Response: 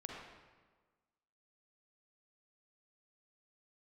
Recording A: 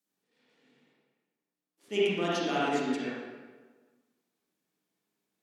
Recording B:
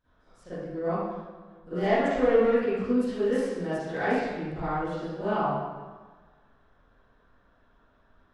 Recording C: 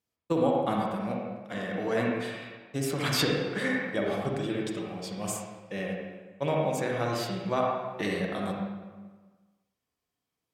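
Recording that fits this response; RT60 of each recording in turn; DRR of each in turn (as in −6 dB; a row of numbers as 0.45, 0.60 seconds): C; 1.4, 1.4, 1.4 seconds; −9.0, −18.0, −1.5 decibels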